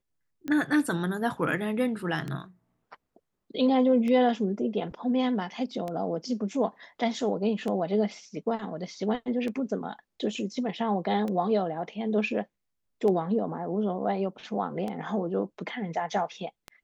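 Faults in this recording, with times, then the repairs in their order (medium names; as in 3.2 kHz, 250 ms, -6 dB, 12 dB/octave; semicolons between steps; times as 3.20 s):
tick 33 1/3 rpm -21 dBFS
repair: de-click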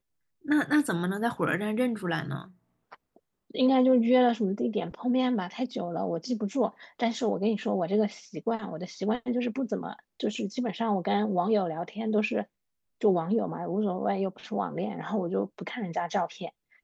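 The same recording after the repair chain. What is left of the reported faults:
nothing left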